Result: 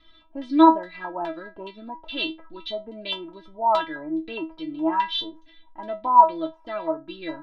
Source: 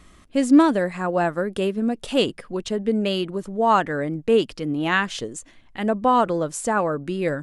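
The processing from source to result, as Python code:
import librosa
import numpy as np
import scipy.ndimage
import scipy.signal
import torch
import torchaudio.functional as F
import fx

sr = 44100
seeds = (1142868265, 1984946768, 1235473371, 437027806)

y = scipy.signal.savgol_filter(x, 15, 4, mode='constant')
y = fx.filter_lfo_lowpass(y, sr, shape='square', hz=2.4, low_hz=900.0, high_hz=3700.0, q=7.0)
y = fx.stiff_resonator(y, sr, f0_hz=320.0, decay_s=0.23, stiffness=0.002)
y = F.gain(torch.from_numpy(y), 5.5).numpy()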